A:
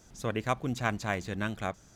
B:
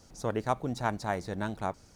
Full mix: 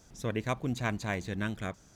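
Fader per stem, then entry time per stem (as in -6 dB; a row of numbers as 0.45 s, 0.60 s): -2.0 dB, -9.5 dB; 0.00 s, 0.00 s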